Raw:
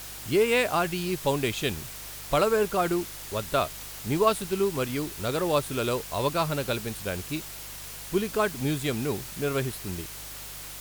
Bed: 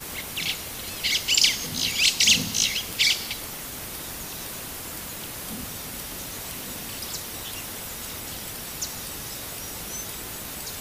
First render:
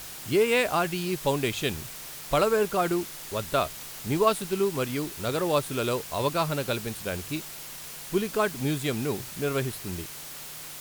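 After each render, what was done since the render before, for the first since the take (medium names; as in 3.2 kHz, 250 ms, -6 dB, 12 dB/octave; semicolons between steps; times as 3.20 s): de-hum 50 Hz, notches 2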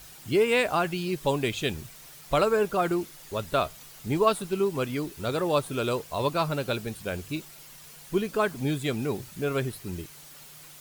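noise reduction 9 dB, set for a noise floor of -41 dBFS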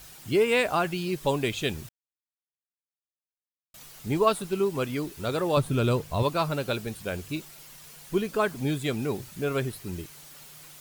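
1.89–3.74 s: mute; 5.57–6.23 s: tone controls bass +11 dB, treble -2 dB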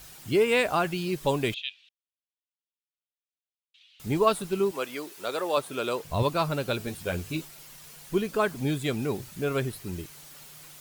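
1.54–4.00 s: Butterworth band-pass 3.1 kHz, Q 2.3; 4.71–6.05 s: high-pass 440 Hz; 6.79–7.47 s: doubling 12 ms -4 dB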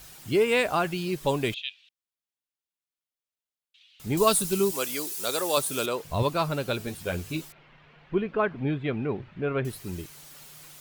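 4.17–5.86 s: tone controls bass +5 dB, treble +15 dB; 7.52–9.65 s: low-pass 2.7 kHz 24 dB/octave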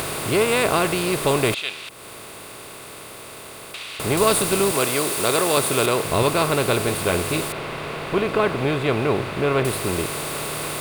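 spectral levelling over time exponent 0.4; upward compressor, threshold -29 dBFS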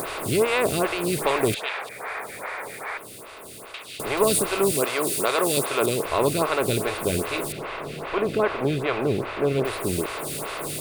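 1.16–2.98 s: painted sound noise 400–2500 Hz -31 dBFS; lamp-driven phase shifter 2.5 Hz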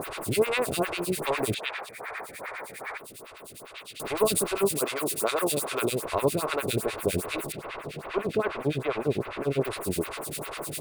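harmonic tremolo 9.9 Hz, depth 100%, crossover 1.2 kHz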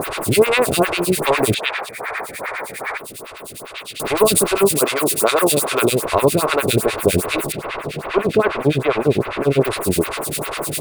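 trim +11 dB; peak limiter -3 dBFS, peak gain reduction 2.5 dB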